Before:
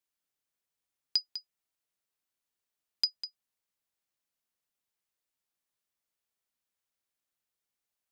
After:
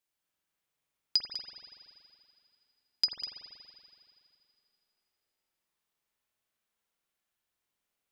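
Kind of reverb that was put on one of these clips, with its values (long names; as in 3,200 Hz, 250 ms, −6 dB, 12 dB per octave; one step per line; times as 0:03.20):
spring reverb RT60 2.6 s, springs 47 ms, chirp 40 ms, DRR −2.5 dB
level +1 dB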